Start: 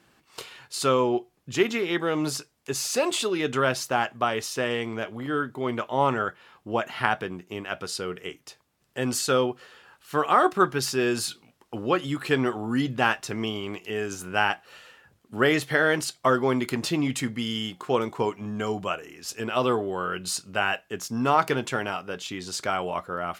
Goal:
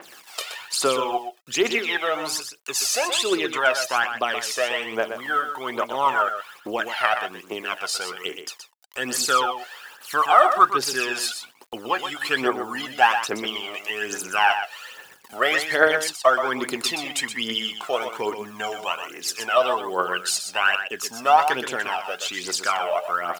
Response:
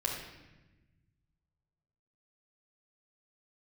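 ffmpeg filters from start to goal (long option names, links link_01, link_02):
-filter_complex "[0:a]asplit=2[link_01][link_02];[link_02]acompressor=threshold=-35dB:ratio=6,volume=0.5dB[link_03];[link_01][link_03]amix=inputs=2:normalize=0,acrusher=bits=8:mix=0:aa=0.000001,highpass=540,acompressor=mode=upward:threshold=-41dB:ratio=2.5,aphaser=in_gain=1:out_gain=1:delay=1.7:decay=0.69:speed=1.2:type=triangular,asplit=2[link_04][link_05];[link_05]aecho=0:1:123:0.376[link_06];[link_04][link_06]amix=inputs=2:normalize=0,adynamicequalizer=threshold=0.0178:dfrequency=4500:dqfactor=0.7:tfrequency=4500:tqfactor=0.7:attack=5:release=100:ratio=0.375:range=2:mode=cutabove:tftype=highshelf,volume=1dB"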